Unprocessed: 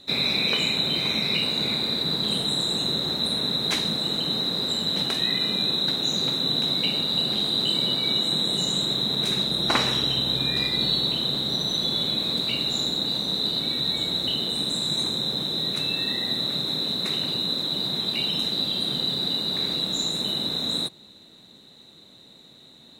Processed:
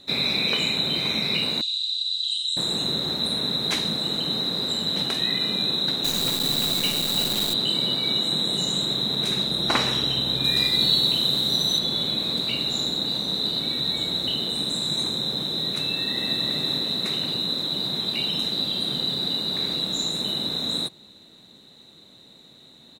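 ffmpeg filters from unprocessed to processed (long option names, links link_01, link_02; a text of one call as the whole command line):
ffmpeg -i in.wav -filter_complex "[0:a]asettb=1/sr,asplit=3[link_01][link_02][link_03];[link_01]atrim=end=1.614[link_04];[link_02]atrim=start=1.61:end=2.57,asetpts=PTS-STARTPTS,afade=type=in:duration=0.004:curve=qsin,afade=type=out:start_time=0.956:duration=0.004:curve=qsin,asuperpass=centerf=5100:order=20:qfactor=0.85[link_05];[link_03]atrim=start=2.566[link_06];[link_04][link_05]acrossfade=duration=0.004:curve1=hsin:curve2=qsin[link_07];[link_07][link_06]acrossfade=duration=0.004:curve1=qsin:curve2=hsin,asettb=1/sr,asplit=3[link_08][link_09][link_10];[link_08]atrim=end=6.044[link_11];[link_09]atrim=start=6.04:end=7.54,asetpts=PTS-STARTPTS,afade=type=in:duration=0.004:curve=qsin,afade=type=out:start_time=1.496:duration=0.004:curve=qsin,acrusher=bits=5:dc=4:mix=0:aa=0.000001[link_12];[link_10]atrim=start=7.536[link_13];[link_11][link_12]acrossfade=duration=0.004:curve1=hsin:curve2=qsin[link_14];[link_14][link_13]acrossfade=duration=0.004:curve1=qsin:curve2=hsin,asettb=1/sr,asplit=3[link_15][link_16][link_17];[link_15]atrim=end=10.444[link_18];[link_16]atrim=start=10.44:end=11.79,asetpts=PTS-STARTPTS,afade=type=in:duration=0.004:curve=qsin,afade=type=out:start_time=1.346:duration=0.004:curve=qsin,highshelf=frequency=5000:gain=10[link_19];[link_17]atrim=start=11.786[link_20];[link_18][link_19]acrossfade=duration=0.004:curve1=hsin:curve2=qsin[link_21];[link_21][link_20]acrossfade=duration=0.004:curve1=qsin:curve2=hsin,asplit=2[link_22][link_23];[link_23]afade=type=in:start_time=15.82:duration=0.01,afade=type=out:start_time=16.45:duration=0.01,aecho=0:1:330|660|990|1320|1650|1980:0.562341|0.281171|0.140585|0.0702927|0.0351463|0.0175732[link_24];[link_22][link_24]amix=inputs=2:normalize=0" out.wav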